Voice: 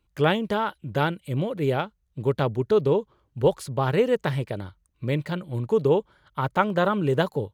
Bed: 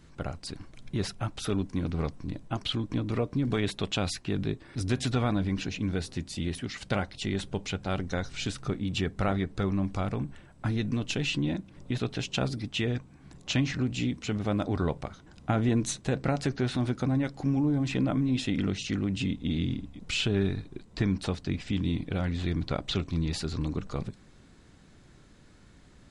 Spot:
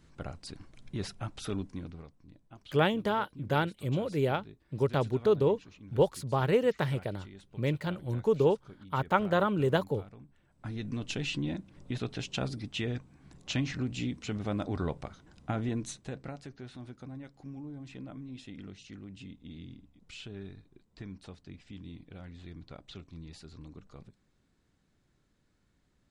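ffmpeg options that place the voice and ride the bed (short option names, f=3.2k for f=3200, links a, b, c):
-filter_complex "[0:a]adelay=2550,volume=-4.5dB[a];[1:a]volume=10dB,afade=t=out:st=1.56:d=0.49:silence=0.188365,afade=t=in:st=10.35:d=0.75:silence=0.16788,afade=t=out:st=15.25:d=1.2:silence=0.237137[b];[a][b]amix=inputs=2:normalize=0"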